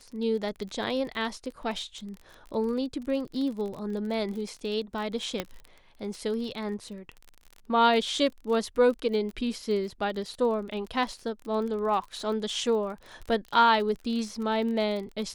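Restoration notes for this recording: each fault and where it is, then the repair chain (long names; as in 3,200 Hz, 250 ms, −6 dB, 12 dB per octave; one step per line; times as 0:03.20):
surface crackle 34 per second −35 dBFS
0:05.40: click −14 dBFS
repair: click removal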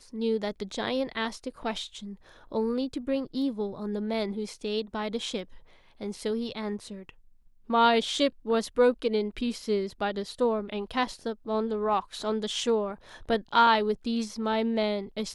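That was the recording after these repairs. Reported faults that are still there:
0:05.40: click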